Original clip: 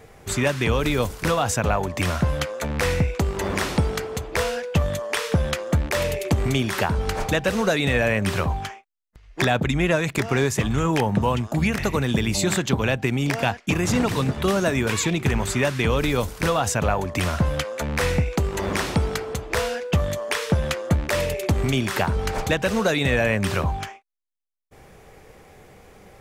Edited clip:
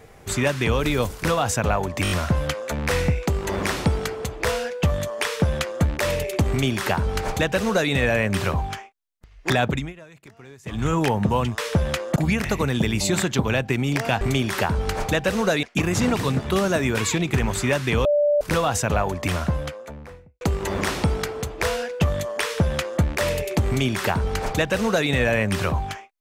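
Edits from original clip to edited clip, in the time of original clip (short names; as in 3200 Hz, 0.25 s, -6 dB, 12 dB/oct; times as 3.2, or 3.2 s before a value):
2.03 stutter 0.02 s, 5 plays
6.41–7.83 copy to 13.55
9.62–10.78 dip -23.5 dB, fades 0.23 s
15.97–16.33 bleep 587 Hz -15.5 dBFS
17.06–18.33 studio fade out
20.35–20.93 copy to 11.5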